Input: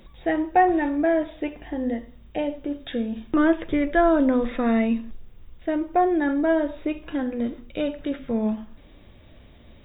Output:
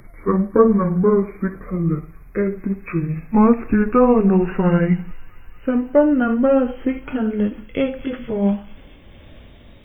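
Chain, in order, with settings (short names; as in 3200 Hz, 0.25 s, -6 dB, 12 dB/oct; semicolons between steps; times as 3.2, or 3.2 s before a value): gliding pitch shift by -9 st ending unshifted; thin delay 0.225 s, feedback 81%, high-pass 2900 Hz, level -14 dB; gain +7 dB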